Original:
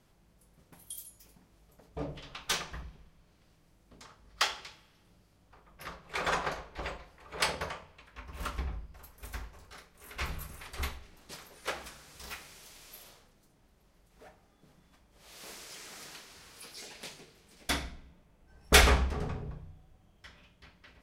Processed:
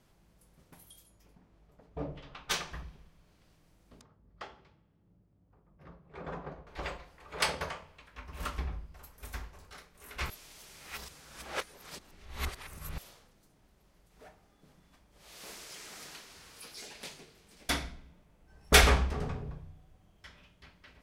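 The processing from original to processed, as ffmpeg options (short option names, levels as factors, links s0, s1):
-filter_complex "[0:a]asettb=1/sr,asplit=3[s0][s1][s2];[s0]atrim=end=0.904[s3];[s1]atrim=start=0.9:end=2.51,asetpts=PTS-STARTPTS,afade=t=in:d=0.004:c=qsin,afade=t=out:st=1.606:d=0.004:c=qsin,lowpass=f=1700:p=1[s4];[s2]atrim=start=2.506[s5];[s3][s4]acrossfade=d=0.004:c1=hsin:c2=qsin[s6];[s6][s5]acrossfade=d=0.004:c1=qsin:c2=hsin,asettb=1/sr,asplit=3[s7][s8][s9];[s7]atrim=end=4.014[s10];[s8]atrim=start=4.01:end=6.67,asetpts=PTS-STARTPTS,afade=t=in:d=0.004:c=qsin,afade=t=out:st=2.656:d=0.004:c=qsin,bandpass=f=140:t=q:w=0.59[s11];[s9]atrim=start=6.666[s12];[s10][s11]acrossfade=d=0.004:c1=hsin:c2=qsin[s13];[s13][s12]acrossfade=d=0.004:c1=qsin:c2=hsin,asplit=3[s14][s15][s16];[s14]atrim=end=10.302[s17];[s15]atrim=start=10.298:end=12.982,asetpts=PTS-STARTPTS,areverse[s18];[s16]atrim=start=12.978[s19];[s17][s18]acrossfade=d=0.004:c1=hsin:c2=hsin[s20];[s20][s19]acrossfade=d=0.004:c1=hsin:c2=hsin"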